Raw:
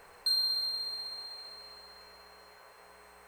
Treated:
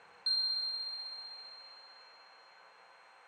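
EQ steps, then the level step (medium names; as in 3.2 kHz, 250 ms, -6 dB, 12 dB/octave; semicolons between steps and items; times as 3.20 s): cabinet simulation 170–6000 Hz, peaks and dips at 260 Hz -3 dB, 390 Hz -9 dB, 610 Hz -8 dB, 1.1 kHz -4 dB, 5.1 kHz -10 dB; peaking EQ 1.9 kHz -5 dB 0.21 oct; hum notches 60/120/180/240/300/360/420 Hz; 0.0 dB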